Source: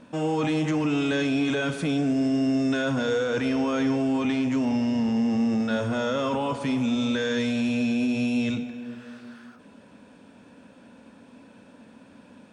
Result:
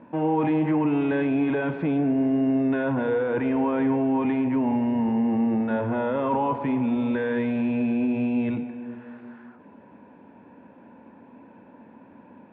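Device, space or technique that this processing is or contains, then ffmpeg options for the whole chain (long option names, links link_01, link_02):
bass cabinet: -af "highpass=66,equalizer=frequency=350:width_type=q:width=4:gain=6,equalizer=frequency=910:width_type=q:width=4:gain=9,equalizer=frequency=1300:width_type=q:width=4:gain=-6,lowpass=frequency=2200:width=0.5412,lowpass=frequency=2200:width=1.3066"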